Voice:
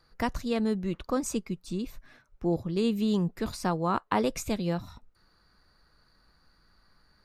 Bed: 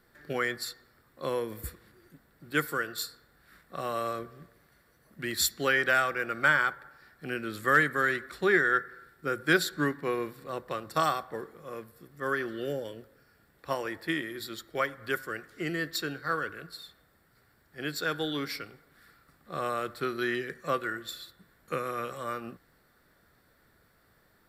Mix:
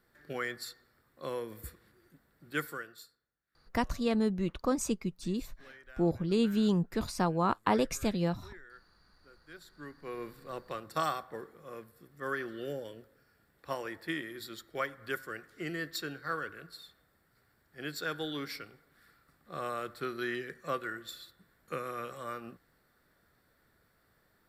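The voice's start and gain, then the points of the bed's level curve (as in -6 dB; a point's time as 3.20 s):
3.55 s, -1.0 dB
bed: 2.66 s -6 dB
3.36 s -29 dB
9.49 s -29 dB
10.31 s -5 dB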